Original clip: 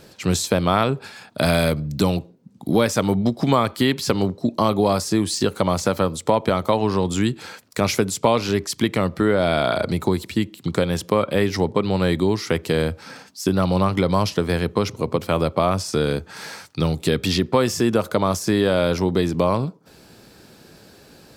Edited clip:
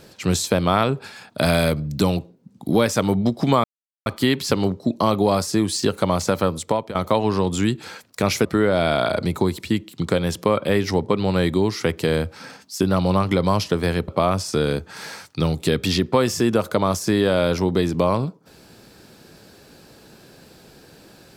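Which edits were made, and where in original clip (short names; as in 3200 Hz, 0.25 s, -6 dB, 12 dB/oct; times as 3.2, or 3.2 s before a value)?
3.64 insert silence 0.42 s
6.2–6.53 fade out, to -16 dB
8.03–9.11 cut
14.74–15.48 cut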